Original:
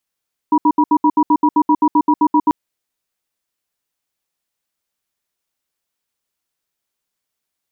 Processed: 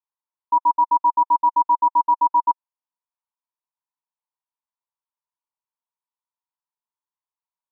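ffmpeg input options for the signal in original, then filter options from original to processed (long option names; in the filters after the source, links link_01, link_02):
-f lavfi -i "aevalsrc='0.266*(sin(2*PI*301*t)+sin(2*PI*964*t))*clip(min(mod(t,0.13),0.06-mod(t,0.13))/0.005,0,1)':duration=1.99:sample_rate=44100"
-af "bandpass=frequency=960:width_type=q:width=8.7:csg=0"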